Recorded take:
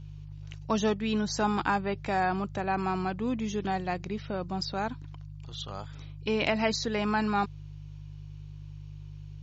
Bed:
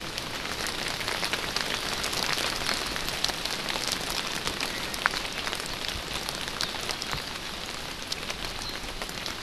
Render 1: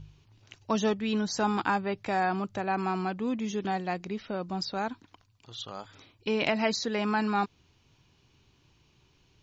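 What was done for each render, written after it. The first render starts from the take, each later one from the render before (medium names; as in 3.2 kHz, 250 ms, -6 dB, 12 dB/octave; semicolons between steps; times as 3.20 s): de-hum 50 Hz, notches 3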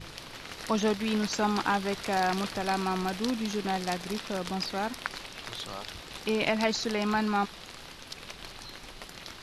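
add bed -10 dB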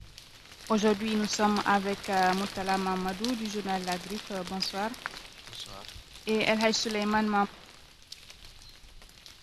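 three bands expanded up and down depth 70%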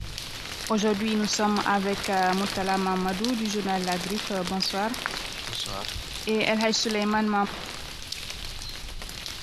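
level flattener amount 50%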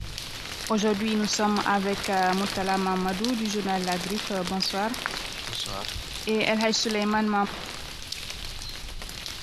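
no audible change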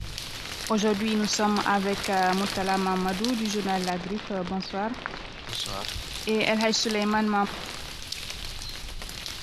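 3.90–5.49 s: tape spacing loss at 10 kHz 23 dB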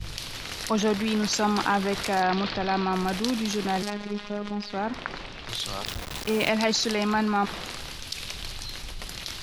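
2.22–2.93 s: Chebyshev low-pass 4.3 kHz, order 3; 3.82–4.73 s: robot voice 206 Hz; 5.85–6.49 s: send-on-delta sampling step -30 dBFS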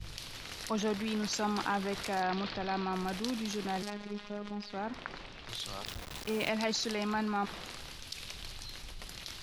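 trim -8.5 dB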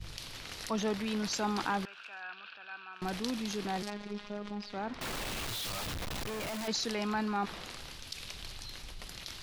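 1.85–3.02 s: two resonant band-passes 2 kHz, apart 0.74 oct; 5.01–6.68 s: one-bit comparator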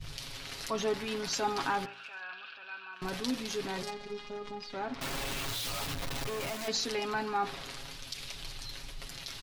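comb 7.3 ms, depth 70%; de-hum 56.8 Hz, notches 35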